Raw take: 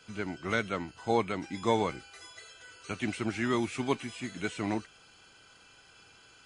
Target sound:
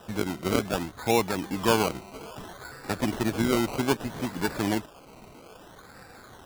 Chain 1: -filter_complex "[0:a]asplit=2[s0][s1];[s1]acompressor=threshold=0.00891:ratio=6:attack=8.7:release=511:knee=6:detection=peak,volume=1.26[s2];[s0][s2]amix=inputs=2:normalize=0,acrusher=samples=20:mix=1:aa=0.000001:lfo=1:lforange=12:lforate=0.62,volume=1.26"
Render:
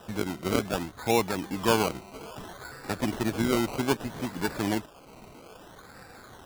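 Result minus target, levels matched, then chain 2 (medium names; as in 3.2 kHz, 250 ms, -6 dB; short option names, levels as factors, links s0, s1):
compression: peak gain reduction +5 dB
-filter_complex "[0:a]asplit=2[s0][s1];[s1]acompressor=threshold=0.0178:ratio=6:attack=8.7:release=511:knee=6:detection=peak,volume=1.26[s2];[s0][s2]amix=inputs=2:normalize=0,acrusher=samples=20:mix=1:aa=0.000001:lfo=1:lforange=12:lforate=0.62,volume=1.26"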